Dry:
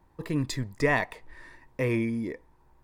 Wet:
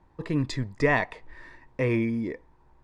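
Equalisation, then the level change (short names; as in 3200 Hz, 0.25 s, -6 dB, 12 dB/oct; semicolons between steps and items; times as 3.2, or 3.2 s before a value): LPF 11000 Hz 12 dB/oct; air absorption 56 m; high shelf 8300 Hz -3.5 dB; +2.0 dB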